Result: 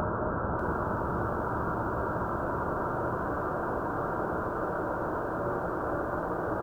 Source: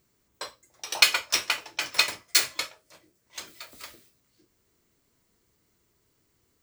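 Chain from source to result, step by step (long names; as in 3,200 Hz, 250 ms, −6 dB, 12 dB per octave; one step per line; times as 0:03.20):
linear delta modulator 32 kbit/s, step −17.5 dBFS
formants moved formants +5 semitones
Butterworth low-pass 1,500 Hz 96 dB per octave
hum removal 249.3 Hz, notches 36
far-end echo of a speakerphone 400 ms, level −22 dB
harmonic and percussive parts rebalanced percussive −3 dB
extreme stretch with random phases 32×, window 0.50 s, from 0:03.30
feedback echo at a low word length 594 ms, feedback 35%, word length 9 bits, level −10 dB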